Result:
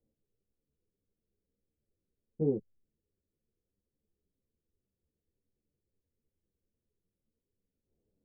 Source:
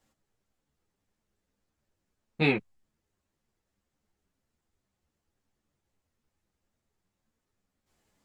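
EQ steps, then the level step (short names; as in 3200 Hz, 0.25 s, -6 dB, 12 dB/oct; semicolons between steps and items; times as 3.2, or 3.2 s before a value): ladder low-pass 530 Hz, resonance 55%; air absorption 360 m; low shelf 330 Hz +8.5 dB; -2.0 dB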